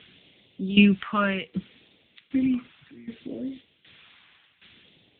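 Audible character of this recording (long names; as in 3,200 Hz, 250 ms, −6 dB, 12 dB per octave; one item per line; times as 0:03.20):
a quantiser's noise floor 8 bits, dither triangular
tremolo saw down 1.3 Hz, depth 85%
phaser sweep stages 2, 0.64 Hz, lowest notch 440–1,200 Hz
AMR narrowband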